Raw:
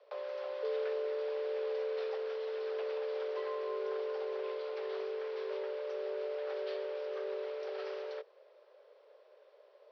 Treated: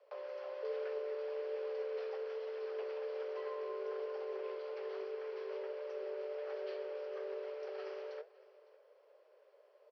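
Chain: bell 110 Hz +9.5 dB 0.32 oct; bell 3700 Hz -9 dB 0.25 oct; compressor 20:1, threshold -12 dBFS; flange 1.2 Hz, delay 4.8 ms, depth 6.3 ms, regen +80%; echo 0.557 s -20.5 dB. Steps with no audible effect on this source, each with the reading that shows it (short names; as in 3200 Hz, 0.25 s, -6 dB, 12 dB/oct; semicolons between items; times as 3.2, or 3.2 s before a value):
bell 110 Hz: input band starts at 340 Hz; compressor, threshold -12 dBFS: input peak -26.5 dBFS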